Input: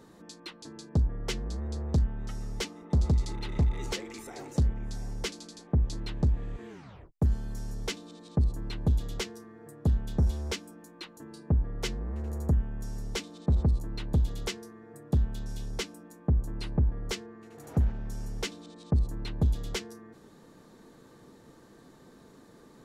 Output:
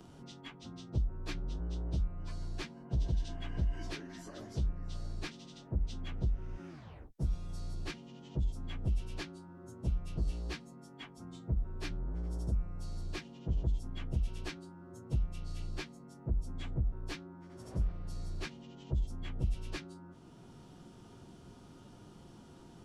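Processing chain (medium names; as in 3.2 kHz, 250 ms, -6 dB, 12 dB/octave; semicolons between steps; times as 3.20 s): frequency-domain pitch shifter -4 st; three bands compressed up and down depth 40%; trim -4.5 dB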